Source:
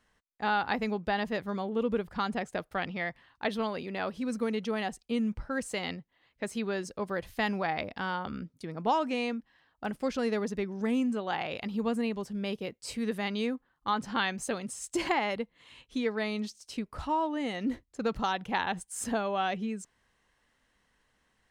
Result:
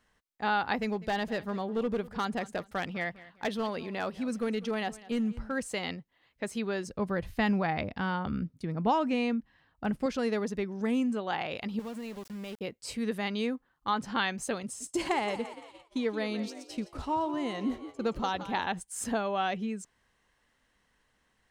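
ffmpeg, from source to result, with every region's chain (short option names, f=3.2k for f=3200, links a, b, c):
-filter_complex "[0:a]asettb=1/sr,asplit=3[a][b][c];[a]atrim=end=0.764[d];[b]atrim=start=0.76:end=5.56,asetpts=PTS-STARTPTS,afade=t=in:d=0.004:c=qsin,afade=t=out:st=4.796:d=0.004:c=qsin,asoftclip=type=hard:threshold=-24.5dB,aecho=1:1:200|400|600:0.112|0.0348|0.0108,atrim=end_sample=211680[e];[c]atrim=start=5.556[f];[d][e]acrossfade=d=0.004:c1=hsin:c2=qsin[g];[g][f]acrossfade=d=0.004:c1=qsin:c2=hsin,asettb=1/sr,asplit=3[h][i][j];[h]atrim=end=6.874[k];[i]atrim=start=6.87:end=10.06,asetpts=PTS-STARTPTS,afade=t=in:d=0.004:c=qsin,afade=t=out:st=3.186:d=0.004:c=qsin,bass=f=250:g=9,treble=f=4k:g=-4,bandreject=f=3.3k:w=30[l];[j]atrim=start=10.056[m];[k][l]acrossfade=d=0.004:c1=hsin:c2=qsin[n];[n][m]acrossfade=d=0.004:c1=qsin:c2=hsin,asettb=1/sr,asplit=3[o][p][q];[o]atrim=end=11.794[r];[p]atrim=start=11.79:end=12.61,asetpts=PTS-STARTPTS,afade=t=in:d=0.004:c=qsin,afade=t=out:st=0.816:d=0.004:c=qsin,acompressor=threshold=-38dB:ratio=3:attack=3.2:release=140:knee=1:detection=peak,aeval=exprs='val(0)*gte(abs(val(0)),0.00531)':c=same[s];[q]atrim=start=12.606[t];[r][s]acrossfade=d=0.004:c1=hsin:c2=qsin[u];[u][t]acrossfade=d=0.004:c1=qsin:c2=hsin,asettb=1/sr,asplit=3[v][w][x];[v]atrim=end=14.634[y];[w]atrim=start=14.63:end=18.67,asetpts=PTS-STARTPTS,afade=t=in:d=0.004:c=qsin,afade=t=out:st=4.036:d=0.004:c=qsin,equalizer=f=1.8k:t=o:w=1.5:g=-3.5,asplit=8[z][aa][ab][ac][ad][ae][af][ag];[aa]adelay=171,afreqshift=45,volume=-13dB[ah];[ab]adelay=342,afreqshift=90,volume=-17.4dB[ai];[ac]adelay=513,afreqshift=135,volume=-21.9dB[aj];[ad]adelay=684,afreqshift=180,volume=-26.3dB[ak];[ae]adelay=855,afreqshift=225,volume=-30.7dB[al];[af]adelay=1026,afreqshift=270,volume=-35.2dB[am];[ag]adelay=1197,afreqshift=315,volume=-39.6dB[an];[z][ah][ai][aj][ak][al][am][an]amix=inputs=8:normalize=0,atrim=end_sample=178164,agate=range=-33dB:threshold=-43dB:ratio=3:release=100:detection=peak[ao];[x]atrim=start=18.666[ap];[y][ao]acrossfade=d=0.004:c1=hsin:c2=qsin[aq];[aq][ap]acrossfade=d=0.004:c1=qsin:c2=hsin"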